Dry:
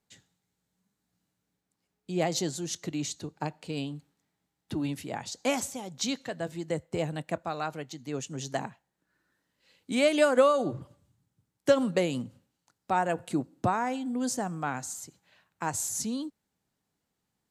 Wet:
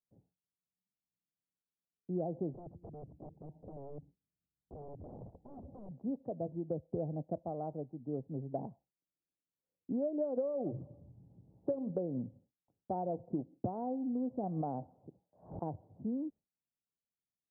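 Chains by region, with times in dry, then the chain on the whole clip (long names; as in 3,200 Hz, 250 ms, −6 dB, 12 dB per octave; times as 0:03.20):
0:02.54–0:05.91: RIAA equalisation playback + downward compressor 12 to 1, threshold −37 dBFS + wrap-around overflow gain 38 dB
0:10.81–0:11.90: upward compression, threshold −39 dBFS + mains-hum notches 50/100/150/200/250/300/350/400/450/500 Hz
0:14.43–0:15.64: parametric band 790 Hz +5.5 dB 2.2 octaves + background raised ahead of every attack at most 110 dB per second
whole clip: noise gate with hold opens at −50 dBFS; Butterworth low-pass 720 Hz 36 dB per octave; downward compressor 6 to 1, threshold −30 dBFS; level −2 dB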